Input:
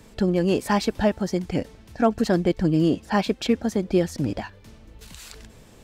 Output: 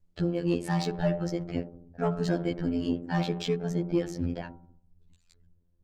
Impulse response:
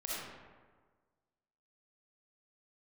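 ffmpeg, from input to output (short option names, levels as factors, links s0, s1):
-filter_complex "[0:a]afreqshift=-35,asplit=2[s0][s1];[1:a]atrim=start_sample=2205[s2];[s1][s2]afir=irnorm=-1:irlink=0,volume=0.211[s3];[s0][s3]amix=inputs=2:normalize=0,anlmdn=10,afftfilt=real='hypot(re,im)*cos(PI*b)':imag='0':win_size=2048:overlap=0.75,bandreject=f=59.69:t=h:w=4,bandreject=f=119.38:t=h:w=4,bandreject=f=179.07:t=h:w=4,bandreject=f=238.76:t=h:w=4,bandreject=f=298.45:t=h:w=4,bandreject=f=358.14:t=h:w=4,bandreject=f=417.83:t=h:w=4,bandreject=f=477.52:t=h:w=4,bandreject=f=537.21:t=h:w=4,bandreject=f=596.9:t=h:w=4,bandreject=f=656.59:t=h:w=4,bandreject=f=716.28:t=h:w=4,bandreject=f=775.97:t=h:w=4,bandreject=f=835.66:t=h:w=4,bandreject=f=895.35:t=h:w=4,bandreject=f=955.04:t=h:w=4,bandreject=f=1014.73:t=h:w=4,bandreject=f=1074.42:t=h:w=4,bandreject=f=1134.11:t=h:w=4,bandreject=f=1193.8:t=h:w=4,bandreject=f=1253.49:t=h:w=4,bandreject=f=1313.18:t=h:w=4,bandreject=f=1372.87:t=h:w=4,bandreject=f=1432.56:t=h:w=4,bandreject=f=1492.25:t=h:w=4,asoftclip=type=tanh:threshold=0.251,volume=0.75" -ar 48000 -c:a libopus -b:a 24k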